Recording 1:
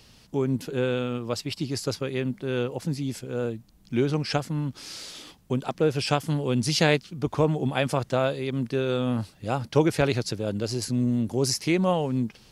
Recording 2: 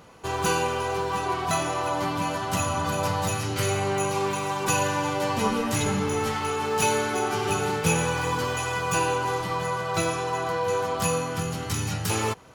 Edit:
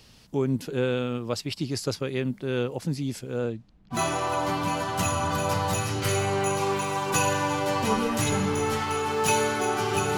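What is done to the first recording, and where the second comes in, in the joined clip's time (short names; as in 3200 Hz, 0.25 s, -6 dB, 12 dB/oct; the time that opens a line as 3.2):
recording 1
3.37–4.02 LPF 11000 Hz -> 1200 Hz
3.96 switch to recording 2 from 1.5 s, crossfade 0.12 s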